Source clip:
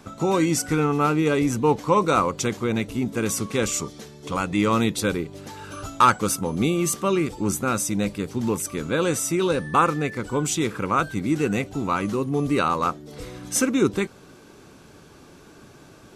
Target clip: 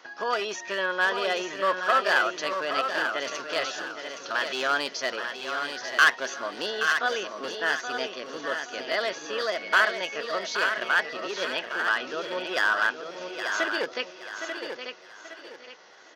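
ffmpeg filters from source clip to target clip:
-filter_complex "[0:a]aresample=11025,aresample=44100,aeval=exprs='clip(val(0),-1,0.158)':c=same,highpass=620,asplit=2[a][b];[b]aecho=0:1:820|1640|2460:0.355|0.106|0.0319[c];[a][c]amix=inputs=2:normalize=0,asetrate=55563,aresample=44100,atempo=0.793701,asplit=2[d][e];[e]aecho=0:1:889:0.447[f];[d][f]amix=inputs=2:normalize=0"

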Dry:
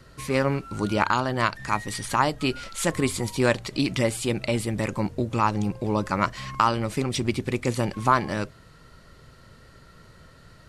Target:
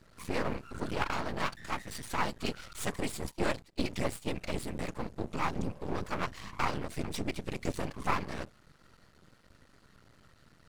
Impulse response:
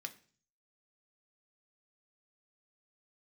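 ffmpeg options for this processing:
-filter_complex "[0:a]asettb=1/sr,asplit=3[a][b][c];[a]atrim=end=2.864[d];[b]atrim=start=2.86:end=4.43,asetpts=PTS-STARTPTS,afade=t=in:d=0.004:c=qsin,afade=t=out:st=1.566:d=0.004:c=qsin,agate=range=-22dB:threshold=-29dB:ratio=16:detection=peak[e];[c]atrim=start=4.426[f];[d][e]acrossfade=d=0.004:c1=hsin:c2=qsin[g];[g][f]acrossfade=d=0.004:c1=qsin:c2=hsin,afftfilt=real='hypot(re,im)*cos(2*PI*random(0))':imag='hypot(re,im)*sin(2*PI*random(1))':win_size=512:overlap=0.75,aeval=exprs='max(val(0),0)':c=same"

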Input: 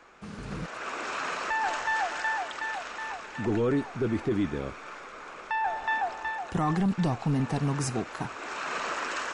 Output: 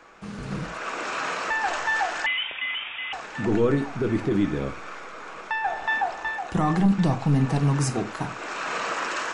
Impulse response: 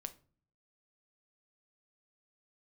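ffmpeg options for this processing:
-filter_complex "[1:a]atrim=start_sample=2205,afade=t=out:st=0.18:d=0.01,atrim=end_sample=8379[a];[0:a][a]afir=irnorm=-1:irlink=0,asettb=1/sr,asplit=3[b][c][d];[b]atrim=end=2.264[e];[c]atrim=start=2.26:end=3.13,asetpts=PTS-STARTPTS,afade=t=in:d=0.004:c=qsin,afade=t=out:st=0.866:d=0.004:c=qsin,lowpass=f=3.2k:t=q:w=0.5098,lowpass=f=3.2k:t=q:w=0.6013,lowpass=f=3.2k:t=q:w=0.9,lowpass=f=3.2k:t=q:w=2.563,afreqshift=-3800[f];[d]atrim=start=3.126[g];[e][f]acrossfade=d=0.004:c1=hsin:c2=qsin[h];[h][g]acrossfade=d=0.004:c1=qsin:c2=hsin,volume=7.5dB"

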